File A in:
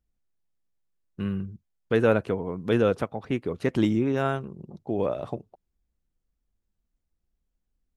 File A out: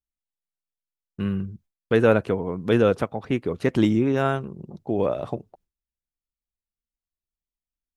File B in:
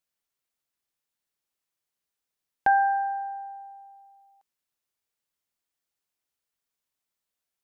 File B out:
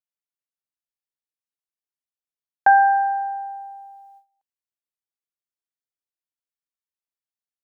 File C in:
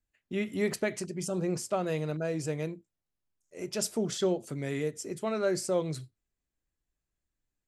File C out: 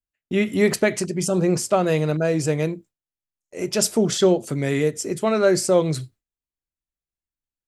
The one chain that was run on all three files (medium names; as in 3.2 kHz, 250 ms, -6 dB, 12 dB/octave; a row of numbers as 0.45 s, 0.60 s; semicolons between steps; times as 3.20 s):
gate with hold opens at -50 dBFS; peak normalisation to -6 dBFS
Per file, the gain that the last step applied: +3.5 dB, +7.0 dB, +11.0 dB